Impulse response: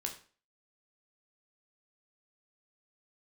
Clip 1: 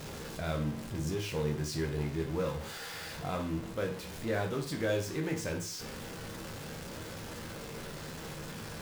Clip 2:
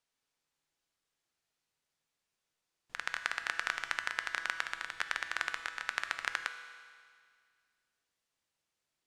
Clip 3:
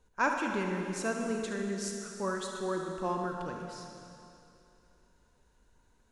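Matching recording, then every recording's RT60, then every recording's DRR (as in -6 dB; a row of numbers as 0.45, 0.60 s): 1; 0.40, 2.0, 2.7 s; 2.0, 8.0, 1.5 dB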